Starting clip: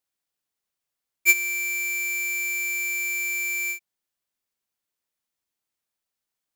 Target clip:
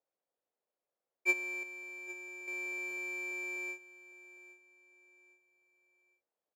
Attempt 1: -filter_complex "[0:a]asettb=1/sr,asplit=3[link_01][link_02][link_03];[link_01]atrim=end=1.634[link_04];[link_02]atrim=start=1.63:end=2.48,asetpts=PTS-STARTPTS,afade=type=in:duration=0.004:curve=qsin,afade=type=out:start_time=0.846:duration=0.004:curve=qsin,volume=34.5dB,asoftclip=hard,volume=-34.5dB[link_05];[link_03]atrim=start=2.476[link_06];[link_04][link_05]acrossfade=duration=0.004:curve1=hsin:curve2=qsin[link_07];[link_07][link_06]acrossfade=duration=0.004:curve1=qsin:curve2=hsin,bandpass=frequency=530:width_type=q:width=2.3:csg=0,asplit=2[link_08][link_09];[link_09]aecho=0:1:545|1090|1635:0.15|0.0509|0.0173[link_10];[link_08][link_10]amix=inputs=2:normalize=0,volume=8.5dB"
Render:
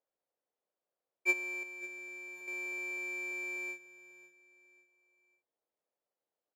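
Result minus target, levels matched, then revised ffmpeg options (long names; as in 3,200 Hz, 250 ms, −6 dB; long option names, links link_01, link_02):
echo 263 ms early
-filter_complex "[0:a]asettb=1/sr,asplit=3[link_01][link_02][link_03];[link_01]atrim=end=1.634[link_04];[link_02]atrim=start=1.63:end=2.48,asetpts=PTS-STARTPTS,afade=type=in:duration=0.004:curve=qsin,afade=type=out:start_time=0.846:duration=0.004:curve=qsin,volume=34.5dB,asoftclip=hard,volume=-34.5dB[link_05];[link_03]atrim=start=2.476[link_06];[link_04][link_05]acrossfade=duration=0.004:curve1=hsin:curve2=qsin[link_07];[link_07][link_06]acrossfade=duration=0.004:curve1=qsin:curve2=hsin,bandpass=frequency=530:width_type=q:width=2.3:csg=0,asplit=2[link_08][link_09];[link_09]aecho=0:1:808|1616|2424:0.15|0.0509|0.0173[link_10];[link_08][link_10]amix=inputs=2:normalize=0,volume=8.5dB"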